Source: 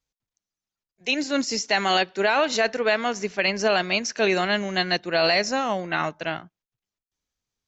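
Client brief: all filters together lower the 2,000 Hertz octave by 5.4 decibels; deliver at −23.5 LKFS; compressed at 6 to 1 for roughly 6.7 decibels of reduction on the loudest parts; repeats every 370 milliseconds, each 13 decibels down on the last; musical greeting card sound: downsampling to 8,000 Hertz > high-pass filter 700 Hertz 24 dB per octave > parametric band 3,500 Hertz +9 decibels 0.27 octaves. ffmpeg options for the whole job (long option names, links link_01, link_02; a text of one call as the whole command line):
ffmpeg -i in.wav -af "equalizer=frequency=2000:width_type=o:gain=-8,acompressor=threshold=-25dB:ratio=6,aecho=1:1:370|740|1110:0.224|0.0493|0.0108,aresample=8000,aresample=44100,highpass=frequency=700:width=0.5412,highpass=frequency=700:width=1.3066,equalizer=frequency=3500:width_type=o:width=0.27:gain=9,volume=10dB" out.wav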